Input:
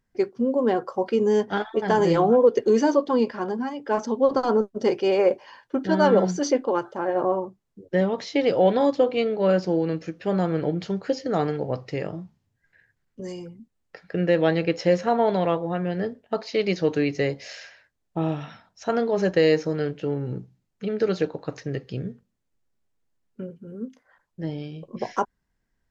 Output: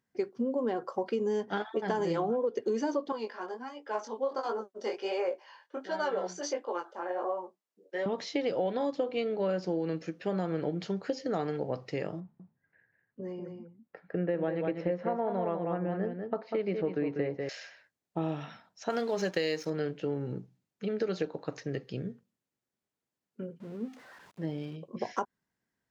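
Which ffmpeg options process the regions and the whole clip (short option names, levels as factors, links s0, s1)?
-filter_complex "[0:a]asettb=1/sr,asplit=3[s0][s1][s2];[s0]atrim=end=3.124[s3];[s1]atrim=start=3.12:end=8.06,asetpts=PTS-STARTPTS,afade=t=in:d=0.004:c=qsin,afade=t=out:st=4.936:d=0.004:c=qsin,highpass=490,flanger=delay=17:depth=5.7:speed=1.4[s4];[s2]atrim=start=8.056[s5];[s3][s4]acrossfade=d=0.004:c1=hsin:c2=qsin[s6];[s6][s5]acrossfade=d=0.004:c1=qsin:c2=hsin,asettb=1/sr,asplit=3[s7][s8][s9];[s7]atrim=end=12.204[s10];[s8]atrim=start=12.2:end=17.49,asetpts=PTS-STARTPTS,afade=t=in:d=0.004:c=qsin,afade=t=out:st=5.286:d=0.004:c=qsin,lowpass=1600,aecho=1:1:195:0.447,atrim=end_sample=233289[s11];[s9]atrim=start=17.486[s12];[s10][s11]acrossfade=d=0.004:c1=hsin:c2=qsin[s13];[s13][s12]acrossfade=d=0.004:c1=qsin:c2=hsin,asettb=1/sr,asplit=3[s14][s15][s16];[s14]atrim=end=18.904[s17];[s15]atrim=start=18.9:end=19.7,asetpts=PTS-STARTPTS,afade=t=in:d=0.004:c=qsin,afade=t=out:st=0.796:d=0.004:c=qsin,highshelf=f=2100:g=10.5,aeval=exprs='sgn(val(0))*max(abs(val(0))-0.00631,0)':c=same[s18];[s16]atrim=start=19.696[s19];[s17][s18]acrossfade=d=0.004:c1=hsin:c2=qsin[s20];[s20][s19]acrossfade=d=0.004:c1=qsin:c2=hsin,asettb=1/sr,asplit=3[s21][s22][s23];[s21]atrim=end=23.604[s24];[s22]atrim=start=23.6:end=24.76,asetpts=PTS-STARTPTS,afade=t=in:d=0.004:c=qsin,afade=t=out:st=1.156:d=0.004:c=qsin,aeval=exprs='val(0)+0.5*0.00631*sgn(val(0))':c=same,highshelf=f=6000:g=-11[s25];[s23]atrim=start=24.756[s26];[s24][s25]acrossfade=d=0.004:c1=hsin:c2=qsin[s27];[s27][s26]acrossfade=d=0.004:c1=qsin:c2=hsin,highpass=140,acompressor=threshold=0.0708:ratio=6,volume=0.631"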